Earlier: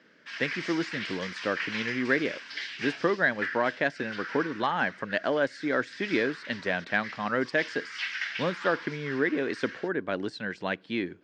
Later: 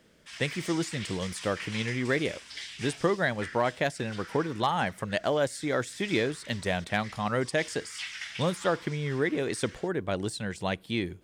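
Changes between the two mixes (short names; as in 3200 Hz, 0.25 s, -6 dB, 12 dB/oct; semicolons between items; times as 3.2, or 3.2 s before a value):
background -5.0 dB; master: remove speaker cabinet 210–4800 Hz, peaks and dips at 270 Hz +5 dB, 770 Hz -3 dB, 1600 Hz +7 dB, 3500 Hz -5 dB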